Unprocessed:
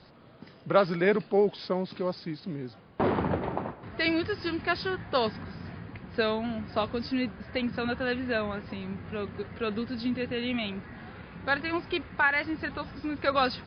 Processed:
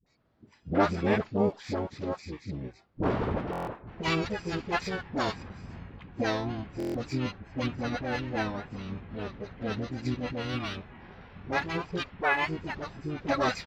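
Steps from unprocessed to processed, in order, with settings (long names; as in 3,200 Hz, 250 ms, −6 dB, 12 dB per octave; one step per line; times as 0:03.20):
noise reduction from a noise print of the clip's start 14 dB
pitch-shifted copies added −12 semitones 0 dB, +3 semitones −6 dB, +7 semitones −8 dB
in parallel at −11.5 dB: dead-zone distortion −35.5 dBFS
on the sum: all-pass dispersion highs, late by 65 ms, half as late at 500 Hz
buffer that repeats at 0:03.51/0:06.78, samples 1,024, times 6
level −7 dB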